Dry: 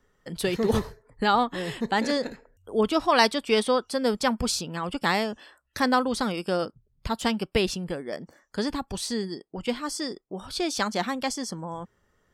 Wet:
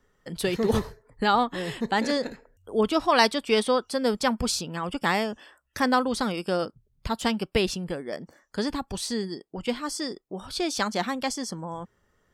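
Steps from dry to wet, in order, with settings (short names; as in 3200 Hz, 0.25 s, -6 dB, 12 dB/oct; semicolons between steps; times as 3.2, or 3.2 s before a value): 4.76–5.89 notch 4100 Hz, Q 5.9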